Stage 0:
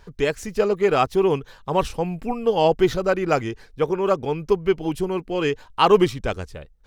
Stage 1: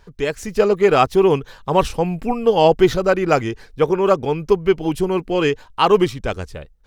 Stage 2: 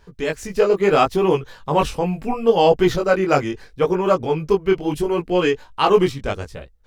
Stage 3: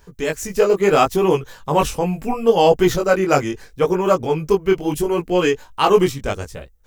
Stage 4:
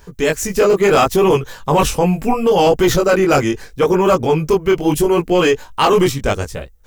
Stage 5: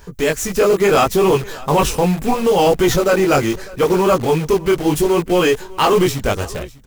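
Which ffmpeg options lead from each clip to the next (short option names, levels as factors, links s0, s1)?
-af "dynaudnorm=f=120:g=7:m=3.76,volume=0.891"
-af "flanger=delay=16.5:depth=5:speed=0.74,volume=1.26"
-af "aexciter=amount=2.7:drive=4.2:freq=6000,volume=1.12"
-af "apsyclip=4.73,volume=0.447"
-filter_complex "[0:a]asplit=2[s0][s1];[s1]aeval=exprs='(mod(12.6*val(0)+1,2)-1)/12.6':c=same,volume=0.447[s2];[s0][s2]amix=inputs=2:normalize=0,aecho=1:1:600:0.0841,volume=0.891"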